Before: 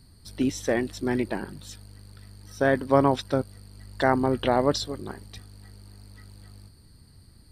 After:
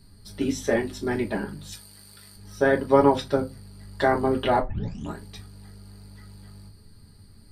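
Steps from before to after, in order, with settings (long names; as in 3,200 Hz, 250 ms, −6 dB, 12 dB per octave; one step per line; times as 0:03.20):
0:01.72–0:02.36: spectral tilt +3 dB per octave
0:04.59: tape start 0.59 s
convolution reverb RT60 0.20 s, pre-delay 5 ms, DRR −1 dB
level −2 dB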